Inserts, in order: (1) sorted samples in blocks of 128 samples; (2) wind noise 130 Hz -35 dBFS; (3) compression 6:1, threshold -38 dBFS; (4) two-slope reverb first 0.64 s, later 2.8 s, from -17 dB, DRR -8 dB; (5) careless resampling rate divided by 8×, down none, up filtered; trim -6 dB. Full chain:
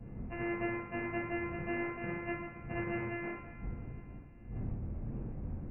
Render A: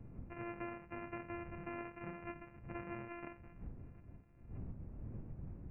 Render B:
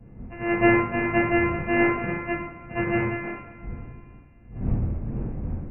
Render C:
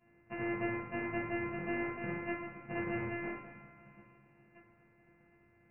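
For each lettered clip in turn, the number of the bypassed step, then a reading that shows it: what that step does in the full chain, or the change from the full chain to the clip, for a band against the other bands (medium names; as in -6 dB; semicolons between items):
4, loudness change -9.0 LU; 3, mean gain reduction 8.5 dB; 2, 125 Hz band -6.0 dB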